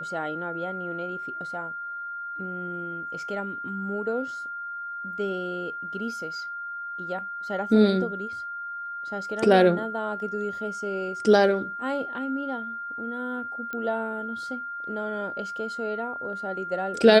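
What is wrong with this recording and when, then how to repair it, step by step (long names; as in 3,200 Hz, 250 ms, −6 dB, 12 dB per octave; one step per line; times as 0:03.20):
whistle 1,400 Hz −32 dBFS
0:13.73: click −21 dBFS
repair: click removal
notch filter 1,400 Hz, Q 30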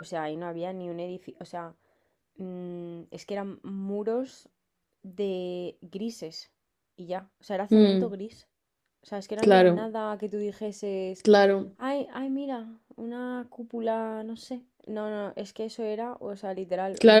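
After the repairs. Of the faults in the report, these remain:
none of them is left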